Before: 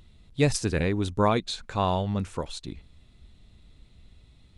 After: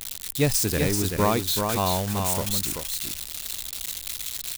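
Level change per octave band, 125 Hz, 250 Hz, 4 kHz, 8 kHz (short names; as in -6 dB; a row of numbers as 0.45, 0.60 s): +1.0, +1.0, +7.5, +13.0 dB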